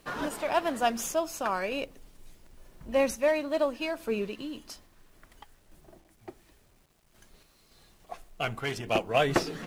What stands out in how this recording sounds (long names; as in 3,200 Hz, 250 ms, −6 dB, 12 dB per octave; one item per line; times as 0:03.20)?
sample-and-hold tremolo, depth 65%
a quantiser's noise floor 12 bits, dither none